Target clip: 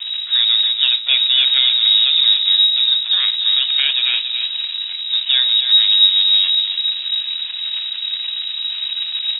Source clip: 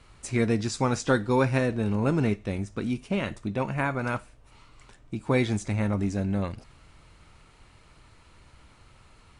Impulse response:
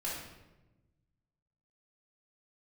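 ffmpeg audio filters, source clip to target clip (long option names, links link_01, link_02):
-filter_complex "[0:a]aeval=exprs='val(0)+0.5*0.0501*sgn(val(0))':channel_layout=same,equalizer=frequency=100:width_type=o:width=0.34:gain=9.5,asplit=2[link_01][link_02];[link_02]alimiter=limit=-19dB:level=0:latency=1:release=348,volume=-0.5dB[link_03];[link_01][link_03]amix=inputs=2:normalize=0,aeval=exprs='val(0)*gte(abs(val(0)),0.0562)':channel_layout=same,aemphasis=mode=reproduction:type=75fm,aecho=1:1:282|564|846|1128|1410:0.447|0.179|0.0715|0.0286|0.0114,adynamicsmooth=sensitivity=1.5:basefreq=880,lowpass=frequency=3300:width_type=q:width=0.5098,lowpass=frequency=3300:width_type=q:width=0.6013,lowpass=frequency=3300:width_type=q:width=0.9,lowpass=frequency=3300:width_type=q:width=2.563,afreqshift=-3900,volume=1.5dB"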